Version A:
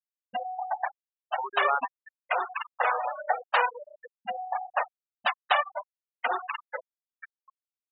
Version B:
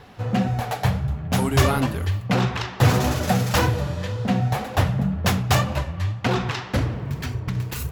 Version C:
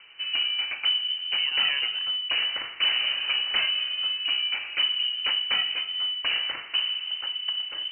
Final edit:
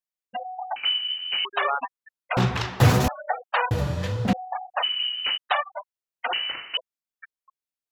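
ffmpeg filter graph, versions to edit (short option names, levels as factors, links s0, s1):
-filter_complex "[2:a]asplit=3[s0][s1][s2];[1:a]asplit=2[s3][s4];[0:a]asplit=6[s5][s6][s7][s8][s9][s10];[s5]atrim=end=0.762[s11];[s0]atrim=start=0.758:end=1.452[s12];[s6]atrim=start=1.448:end=2.372[s13];[s3]atrim=start=2.368:end=3.082[s14];[s7]atrim=start=3.078:end=3.712[s15];[s4]atrim=start=3.708:end=4.332[s16];[s8]atrim=start=4.328:end=4.84[s17];[s1]atrim=start=4.82:end=5.38[s18];[s9]atrim=start=5.36:end=6.332[s19];[s2]atrim=start=6.328:end=6.772[s20];[s10]atrim=start=6.768[s21];[s11][s12]acrossfade=d=0.004:c1=hsin:c2=hsin[s22];[s22][s13]acrossfade=d=0.004:c1=hsin:c2=hsin[s23];[s23][s14]acrossfade=d=0.004:c1=hsin:c2=hsin[s24];[s24][s15]acrossfade=d=0.004:c1=hsin:c2=hsin[s25];[s25][s16]acrossfade=d=0.004:c1=hsin:c2=hsin[s26];[s26][s17]acrossfade=d=0.004:c1=hsin:c2=hsin[s27];[s27][s18]acrossfade=d=0.02:c1=tri:c2=tri[s28];[s28][s19]acrossfade=d=0.02:c1=tri:c2=tri[s29];[s29][s20]acrossfade=d=0.004:c1=hsin:c2=hsin[s30];[s30][s21]acrossfade=d=0.004:c1=hsin:c2=hsin"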